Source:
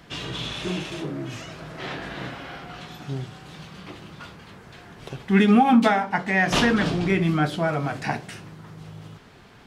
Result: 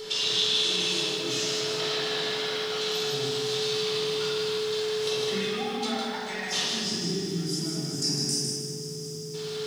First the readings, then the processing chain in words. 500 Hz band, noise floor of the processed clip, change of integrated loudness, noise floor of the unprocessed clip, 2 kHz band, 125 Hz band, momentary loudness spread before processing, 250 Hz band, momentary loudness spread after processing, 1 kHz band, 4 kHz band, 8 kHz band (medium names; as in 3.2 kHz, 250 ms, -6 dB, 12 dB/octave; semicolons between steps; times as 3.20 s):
+0.5 dB, -36 dBFS, -4.5 dB, -49 dBFS, -7.0 dB, -8.0 dB, 24 LU, -11.5 dB, 8 LU, -11.0 dB, +8.5 dB, +11.0 dB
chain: frequency weighting A; whistle 430 Hz -40 dBFS; time-frequency box 6.64–9.34 s, 420–4700 Hz -24 dB; compression 10:1, threshold -39 dBFS, peak gain reduction 23.5 dB; resonant high shelf 2.9 kHz +12.5 dB, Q 1.5; echo whose repeats swap between lows and highs 100 ms, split 990 Hz, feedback 86%, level -13.5 dB; simulated room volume 1500 m³, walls mixed, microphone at 4.3 m; bit-crushed delay 156 ms, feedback 35%, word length 9-bit, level -5 dB